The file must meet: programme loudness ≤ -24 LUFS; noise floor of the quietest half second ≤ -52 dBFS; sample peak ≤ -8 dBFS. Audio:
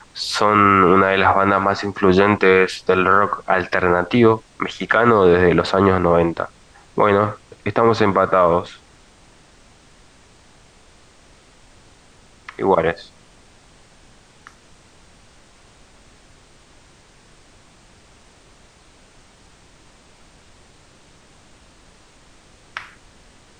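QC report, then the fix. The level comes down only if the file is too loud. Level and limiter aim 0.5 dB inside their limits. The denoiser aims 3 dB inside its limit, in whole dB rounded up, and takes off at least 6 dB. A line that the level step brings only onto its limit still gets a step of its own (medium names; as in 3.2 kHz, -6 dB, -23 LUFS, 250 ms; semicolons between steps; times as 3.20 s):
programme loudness -16.5 LUFS: fail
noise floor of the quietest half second -50 dBFS: fail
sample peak -2.0 dBFS: fail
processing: trim -8 dB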